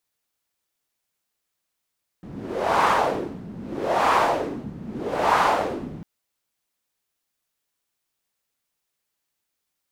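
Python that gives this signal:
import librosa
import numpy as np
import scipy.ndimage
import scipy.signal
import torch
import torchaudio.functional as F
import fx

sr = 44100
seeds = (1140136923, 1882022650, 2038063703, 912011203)

y = fx.wind(sr, seeds[0], length_s=3.8, low_hz=180.0, high_hz=1000.0, q=2.4, gusts=3, swing_db=18.0)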